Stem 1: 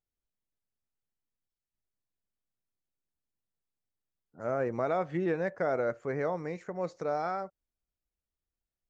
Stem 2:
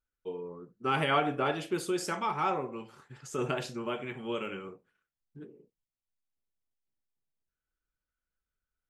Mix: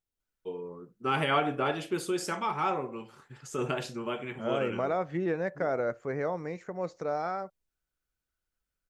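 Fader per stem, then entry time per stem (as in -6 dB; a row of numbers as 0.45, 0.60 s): 0.0, +0.5 dB; 0.00, 0.20 s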